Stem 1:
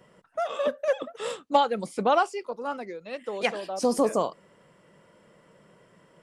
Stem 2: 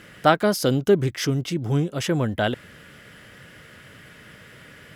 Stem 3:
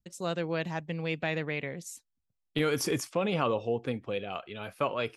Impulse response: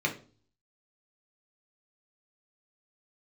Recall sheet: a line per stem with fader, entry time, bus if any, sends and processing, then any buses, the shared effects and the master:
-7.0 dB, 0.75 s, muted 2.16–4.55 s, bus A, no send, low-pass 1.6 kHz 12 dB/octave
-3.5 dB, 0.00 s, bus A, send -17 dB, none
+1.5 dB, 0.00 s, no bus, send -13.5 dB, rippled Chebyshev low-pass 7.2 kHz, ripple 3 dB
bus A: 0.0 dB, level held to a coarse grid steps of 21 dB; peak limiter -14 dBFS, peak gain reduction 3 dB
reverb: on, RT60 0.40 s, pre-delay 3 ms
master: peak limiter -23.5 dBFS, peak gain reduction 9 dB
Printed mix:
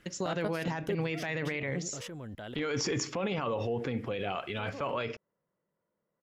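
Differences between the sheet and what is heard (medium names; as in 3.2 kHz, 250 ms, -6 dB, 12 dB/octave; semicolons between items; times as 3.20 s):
stem 2: send off; stem 3 +1.5 dB -> +11.0 dB; reverb return -7.5 dB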